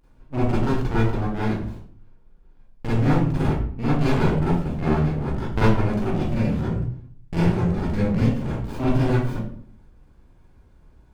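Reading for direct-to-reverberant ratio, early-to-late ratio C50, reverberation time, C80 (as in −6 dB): −10.5 dB, −2.0 dB, 0.55 s, 4.5 dB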